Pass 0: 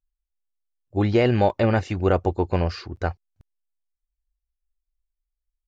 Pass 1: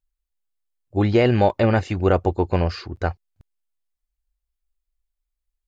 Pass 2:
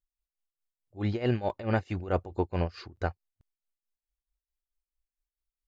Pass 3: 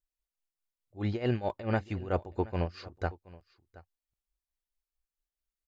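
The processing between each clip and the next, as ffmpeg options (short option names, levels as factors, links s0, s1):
-af "bandreject=f=5700:w=15,volume=1.26"
-af "tremolo=f=4.6:d=0.87,volume=0.473"
-af "aecho=1:1:724:0.0944,volume=0.794"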